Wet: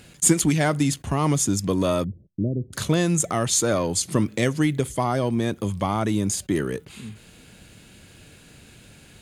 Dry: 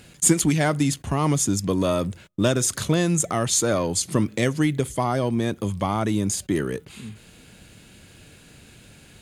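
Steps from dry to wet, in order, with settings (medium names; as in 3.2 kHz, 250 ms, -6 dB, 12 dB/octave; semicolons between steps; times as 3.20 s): 2.04–2.73 s: Gaussian low-pass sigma 22 samples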